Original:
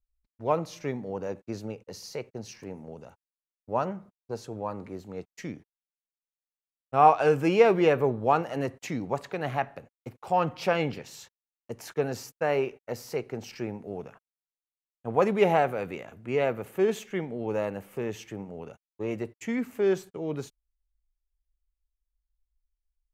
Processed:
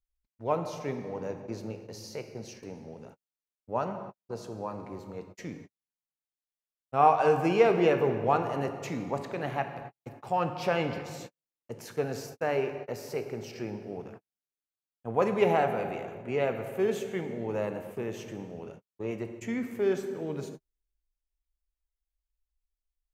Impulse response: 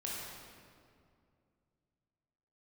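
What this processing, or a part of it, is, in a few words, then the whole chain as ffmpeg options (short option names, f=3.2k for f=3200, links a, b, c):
keyed gated reverb: -filter_complex "[0:a]asplit=3[a][b][c];[1:a]atrim=start_sample=2205[d];[b][d]afir=irnorm=-1:irlink=0[e];[c]apad=whole_len=1020244[f];[e][f]sidechaingate=range=-59dB:threshold=-49dB:ratio=16:detection=peak,volume=-5dB[g];[a][g]amix=inputs=2:normalize=0,volume=-5.5dB"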